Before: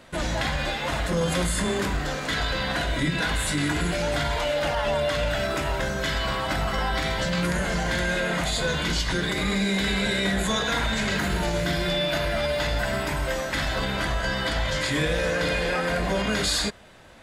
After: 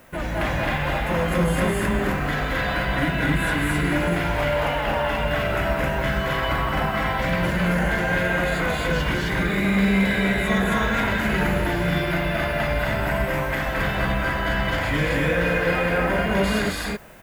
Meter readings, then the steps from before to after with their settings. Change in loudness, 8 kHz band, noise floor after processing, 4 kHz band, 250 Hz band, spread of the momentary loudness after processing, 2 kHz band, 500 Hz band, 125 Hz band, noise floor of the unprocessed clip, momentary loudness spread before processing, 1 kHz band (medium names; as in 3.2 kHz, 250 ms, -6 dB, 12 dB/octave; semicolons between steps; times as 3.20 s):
+2.5 dB, -6.5 dB, -26 dBFS, -4.0 dB, +4.5 dB, 3 LU, +4.0 dB, +2.5 dB, +4.0 dB, -30 dBFS, 3 LU, +4.0 dB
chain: high-order bell 5.7 kHz -12 dB; added noise blue -59 dBFS; loudspeakers at several distances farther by 75 m -3 dB, 91 m 0 dB